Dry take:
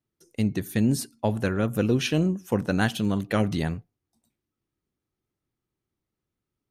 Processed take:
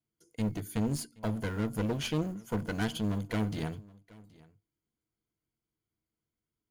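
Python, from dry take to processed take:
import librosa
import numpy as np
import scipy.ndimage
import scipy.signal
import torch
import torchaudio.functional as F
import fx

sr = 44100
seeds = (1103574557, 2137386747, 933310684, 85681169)

y = fx.block_float(x, sr, bits=7)
y = fx.ripple_eq(y, sr, per_octave=1.8, db=9)
y = fx.clip_asym(y, sr, top_db=-29.5, bottom_db=-14.0)
y = y + 10.0 ** (-23.0 / 20.0) * np.pad(y, (int(773 * sr / 1000.0), 0))[:len(y)]
y = F.gain(torch.from_numpy(y), -6.5).numpy()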